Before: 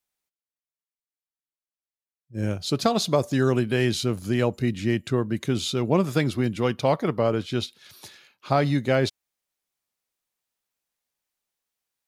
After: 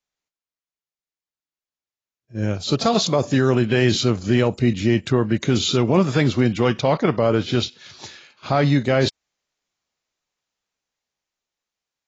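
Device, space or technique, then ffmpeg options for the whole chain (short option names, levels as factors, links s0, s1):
low-bitrate web radio: -filter_complex "[0:a]asettb=1/sr,asplit=3[s0][s1][s2];[s0]atrim=end=4.234[s3];[s1]atrim=start=4.23:end=4.98,asetpts=PTS-STARTPTS,afade=t=in:d=0.004:c=qsin,afade=t=out:st=0.746:d=0.004:c=qsin,adynamicequalizer=threshold=0.00501:dfrequency=1600:dqfactor=1.7:tfrequency=1600:tqfactor=1.7:attack=5:release=100:ratio=0.375:range=3.5:mode=cutabove:tftype=bell[s4];[s2]atrim=start=4.976[s5];[s3][s4]acrossfade=d=0.004:c1=hsin:c2=qsin[s6];[s6][s5]acrossfade=d=0.004:c1=qsin:c2=hsin,dynaudnorm=f=720:g=7:m=6.31,alimiter=limit=0.422:level=0:latency=1:release=16" -ar 16000 -c:a aac -b:a 24k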